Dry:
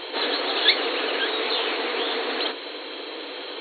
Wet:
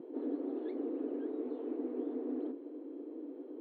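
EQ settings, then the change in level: Butterworth band-pass 210 Hz, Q 1.4; +3.0 dB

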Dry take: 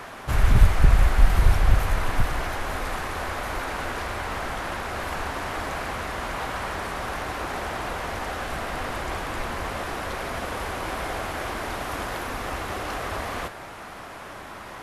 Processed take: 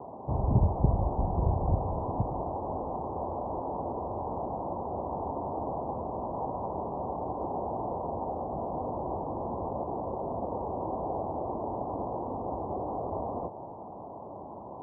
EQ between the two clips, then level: high-pass 98 Hz 12 dB/octave; steep low-pass 970 Hz 72 dB/octave; 0.0 dB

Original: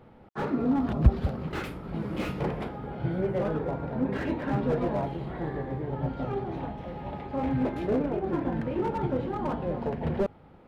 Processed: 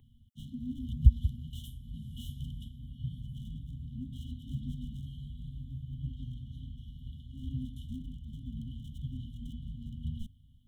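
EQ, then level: brick-wall FIR band-stop 250–2900 Hz; static phaser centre 950 Hz, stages 8; +1.5 dB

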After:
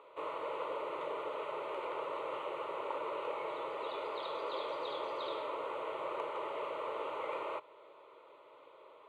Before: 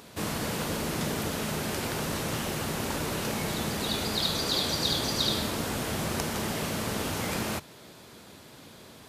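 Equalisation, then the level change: ladder band-pass 820 Hz, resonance 35%; static phaser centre 1.1 kHz, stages 8; +11.0 dB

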